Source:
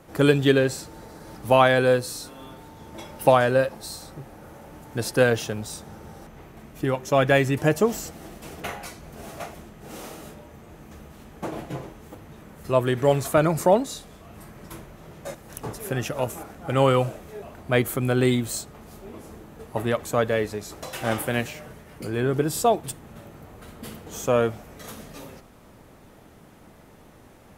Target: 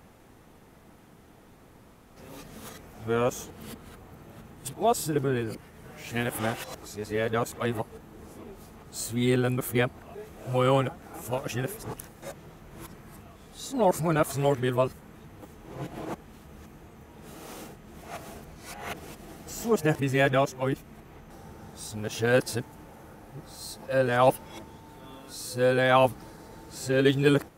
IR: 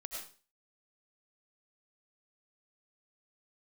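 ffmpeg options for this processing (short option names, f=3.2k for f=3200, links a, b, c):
-af "areverse,bandreject=f=590:w=12,volume=-3.5dB"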